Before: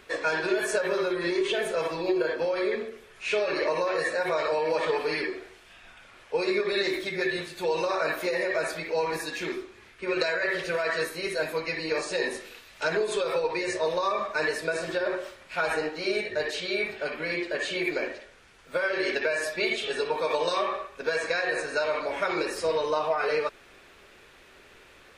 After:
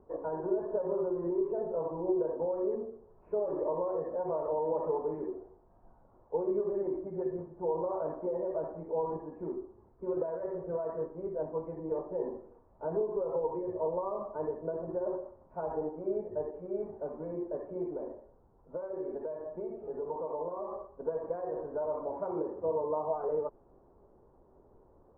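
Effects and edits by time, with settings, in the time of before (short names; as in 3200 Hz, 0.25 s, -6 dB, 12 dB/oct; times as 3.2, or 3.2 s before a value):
17.87–20.71 compressor 2:1, threshold -29 dBFS
22.12–23.08 HPF 78 Hz
whole clip: elliptic low-pass 960 Hz, stop band 80 dB; low shelf 230 Hz +6 dB; gain -5.5 dB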